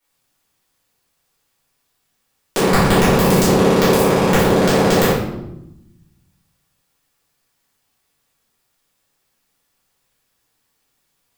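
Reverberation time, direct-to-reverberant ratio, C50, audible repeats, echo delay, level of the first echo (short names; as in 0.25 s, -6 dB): 0.90 s, -13.0 dB, 1.5 dB, none, none, none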